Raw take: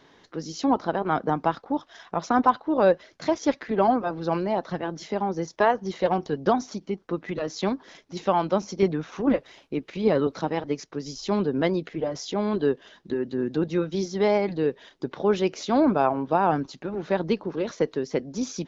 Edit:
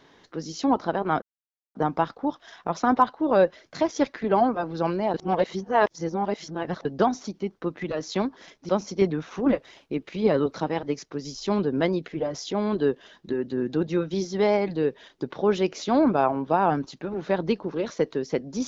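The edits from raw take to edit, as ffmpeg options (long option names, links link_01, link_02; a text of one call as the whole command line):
ffmpeg -i in.wav -filter_complex "[0:a]asplit=5[link_01][link_02][link_03][link_04][link_05];[link_01]atrim=end=1.22,asetpts=PTS-STARTPTS,afade=type=out:start_time=1.216:duration=0.004:curve=hsin,apad=pad_dur=0.53[link_06];[link_02]atrim=start=1.22:end=4.612,asetpts=PTS-STARTPTS,afade=type=in:duration=0.004:curve=hsin[link_07];[link_03]atrim=start=4.608:end=6.322,asetpts=PTS-STARTPTS,areverse[link_08];[link_04]atrim=start=6.318:end=8.162[link_09];[link_05]atrim=start=8.498[link_10];[link_06][link_07]concat=n=2:v=0:a=1[link_11];[link_11][link_08]acrossfade=duration=0.004:curve1=hsin:curve2=hsin[link_12];[link_12][link_09]acrossfade=duration=0.004:curve1=hsin:curve2=hsin[link_13];[link_13][link_10]acrossfade=duration=0.004:curve1=hsin:curve2=hsin" out.wav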